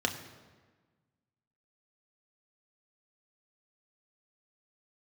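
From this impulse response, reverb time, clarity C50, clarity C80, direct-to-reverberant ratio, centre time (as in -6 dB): 1.4 s, 10.0 dB, 11.5 dB, 3.0 dB, 21 ms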